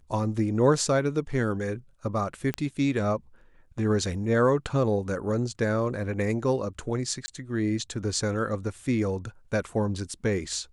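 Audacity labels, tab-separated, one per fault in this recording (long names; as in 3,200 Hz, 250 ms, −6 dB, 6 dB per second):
2.540000	2.540000	click −14 dBFS
7.260000	7.280000	drop-out 20 ms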